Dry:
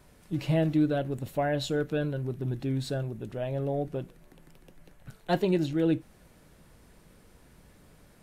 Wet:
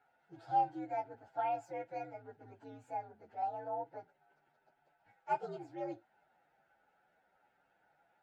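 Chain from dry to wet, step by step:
partials spread apart or drawn together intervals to 122%
pair of resonant band-passes 1,100 Hz, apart 0.81 octaves
level +3 dB

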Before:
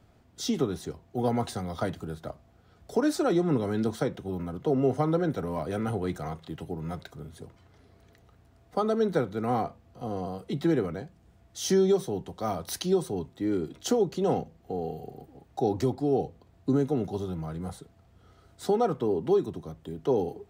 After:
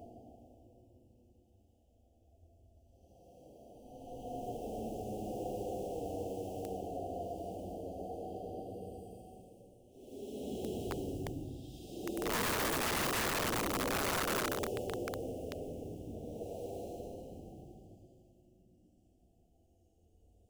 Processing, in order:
sub-harmonics by changed cycles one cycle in 3, muted
Chebyshev band-stop filter 760–2,800 Hz, order 4
mains-hum notches 60/120/180/240/300/360 Hz
extreme stretch with random phases 13×, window 0.10 s, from 0:09.70
graphic EQ with 15 bands 160 Hz −10 dB, 1,600 Hz −4 dB, 4,000 Hz −12 dB
wrap-around overflow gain 25.5 dB
level −3.5 dB

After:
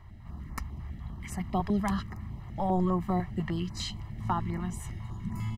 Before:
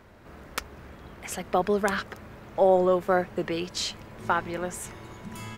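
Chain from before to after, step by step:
bass and treble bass +12 dB, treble −4 dB
comb filter 1 ms, depth 84%
notch on a step sequencer 10 Hz 230–3,300 Hz
level −7 dB

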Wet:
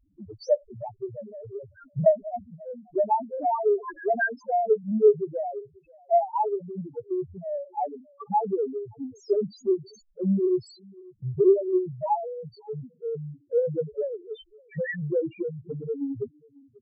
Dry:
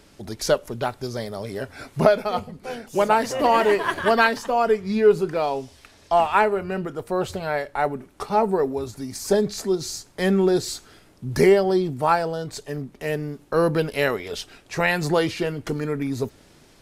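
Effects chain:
single-tap delay 540 ms −23.5 dB
spectral peaks only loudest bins 1
transient designer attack +6 dB, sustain −1 dB

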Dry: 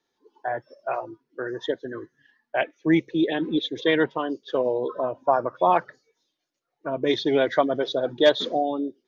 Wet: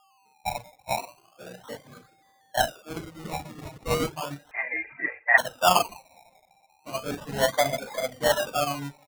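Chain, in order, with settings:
sub-octave generator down 1 octave, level −4 dB
low-shelf EQ 94 Hz −10 dB
comb filter 1.3 ms, depth 79%
coupled-rooms reverb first 0.54 s, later 2 s, from −16 dB, DRR −5.5 dB
steady tone 780 Hz −40 dBFS
sample-and-hold swept by an LFO 22×, swing 60% 0.35 Hz
reverb reduction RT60 0.53 s
0:04.51–0:05.38: voice inversion scrambler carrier 2,600 Hz
expander for the loud parts 1.5 to 1, over −30 dBFS
level −7 dB

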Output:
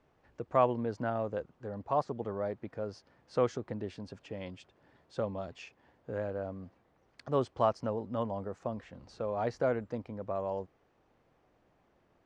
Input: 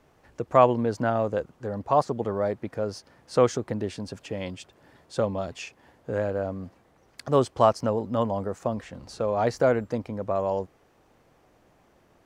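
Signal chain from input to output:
Bessel low-pass filter 4,100 Hz, order 2
level −8.5 dB

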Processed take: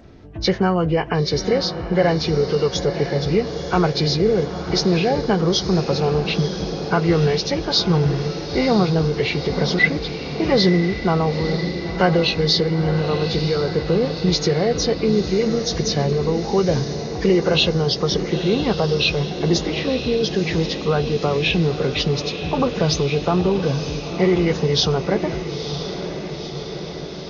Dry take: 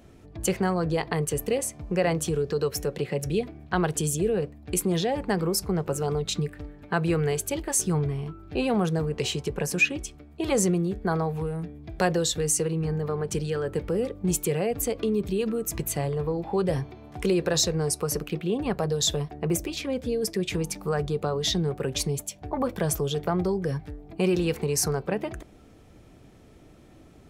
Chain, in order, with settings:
hearing-aid frequency compression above 1,300 Hz 1.5 to 1
feedback delay with all-pass diffusion 957 ms, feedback 69%, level −9.5 dB
level +7 dB

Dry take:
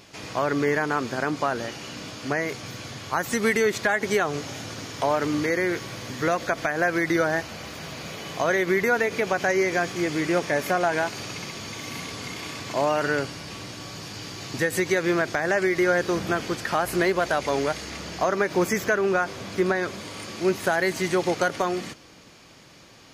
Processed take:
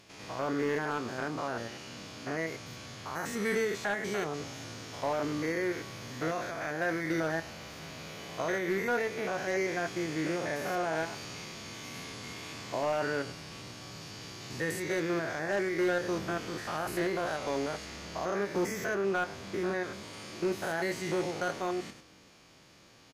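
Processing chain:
spectrum averaged block by block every 100 ms
double-tracking delay 25 ms −11.5 dB
hard clipping −17 dBFS, distortion −21 dB
level −6.5 dB

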